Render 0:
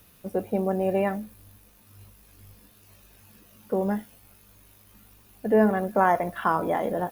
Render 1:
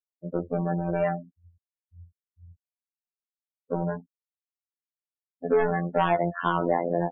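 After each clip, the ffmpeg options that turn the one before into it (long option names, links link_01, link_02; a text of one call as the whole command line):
ffmpeg -i in.wav -af "asoftclip=type=tanh:threshold=-21.5dB,afftfilt=real='re*gte(hypot(re,im),0.0282)':imag='im*gte(hypot(re,im),0.0282)':win_size=1024:overlap=0.75,afftfilt=real='hypot(re,im)*cos(PI*b)':imag='0':win_size=2048:overlap=0.75,volume=6.5dB" out.wav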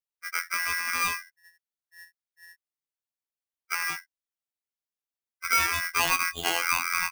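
ffmpeg -i in.wav -af "aeval=exprs='val(0)*sgn(sin(2*PI*1800*n/s))':channel_layout=same,volume=-2dB" out.wav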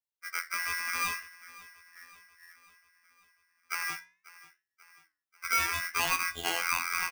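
ffmpeg -i in.wav -af "aecho=1:1:540|1080|1620|2160|2700:0.106|0.0604|0.0344|0.0196|0.0112,flanger=delay=9.1:depth=5.3:regen=-80:speed=0.63:shape=sinusoidal" out.wav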